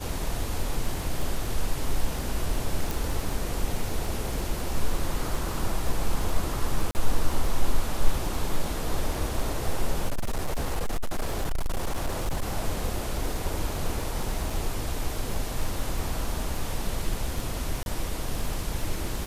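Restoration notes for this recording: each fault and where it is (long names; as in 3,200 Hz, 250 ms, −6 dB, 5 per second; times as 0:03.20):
surface crackle 13 per second −29 dBFS
0:02.91: click
0:06.91–0:06.95: drop-out 39 ms
0:10.08–0:12.57: clipping −22.5 dBFS
0:14.50: drop-out 4.1 ms
0:17.83–0:17.86: drop-out 31 ms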